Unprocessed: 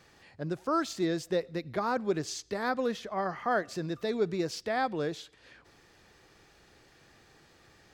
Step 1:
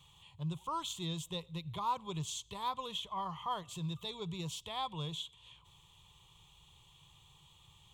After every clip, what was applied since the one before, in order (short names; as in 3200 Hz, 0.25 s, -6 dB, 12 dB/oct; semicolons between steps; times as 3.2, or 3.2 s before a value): EQ curve 160 Hz 0 dB, 240 Hz -23 dB, 370 Hz -18 dB, 690 Hz -18 dB, 1000 Hz +3 dB, 1600 Hz -28 dB, 3300 Hz +9 dB, 4900 Hz -18 dB, 7100 Hz 0 dB, 12000 Hz -2 dB; gain +1.5 dB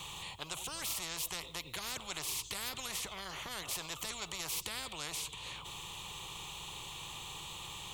spectral compressor 10:1; gain +3 dB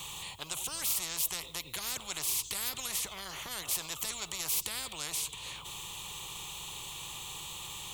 high shelf 6500 Hz +10.5 dB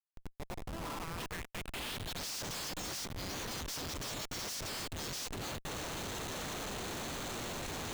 bin magnitudes rounded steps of 30 dB; band-pass sweep 600 Hz -> 5400 Hz, 0.49–2.3; Schmitt trigger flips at -48 dBFS; gain +6.5 dB